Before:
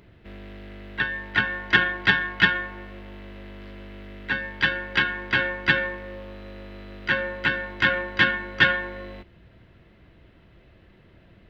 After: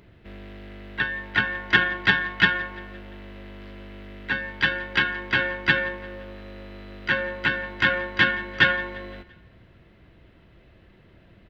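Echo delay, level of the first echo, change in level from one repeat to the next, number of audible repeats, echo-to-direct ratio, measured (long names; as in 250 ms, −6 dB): 172 ms, −22.0 dB, −5.5 dB, 3, −20.5 dB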